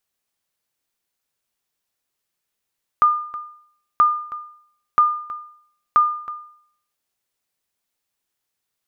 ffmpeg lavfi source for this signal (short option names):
-f lavfi -i "aevalsrc='0.422*(sin(2*PI*1210*mod(t,0.98))*exp(-6.91*mod(t,0.98)/0.62)+0.141*sin(2*PI*1210*max(mod(t,0.98)-0.32,0))*exp(-6.91*max(mod(t,0.98)-0.32,0)/0.62))':d=3.92:s=44100"